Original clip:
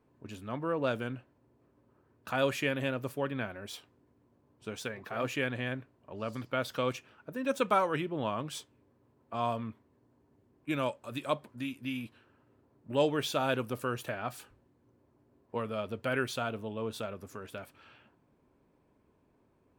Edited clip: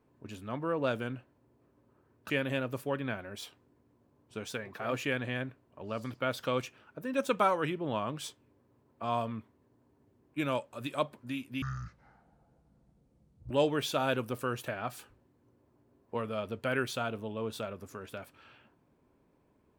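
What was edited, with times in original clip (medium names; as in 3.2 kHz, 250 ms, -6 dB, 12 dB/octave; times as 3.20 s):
2.30–2.61 s: delete
11.93–12.91 s: speed 52%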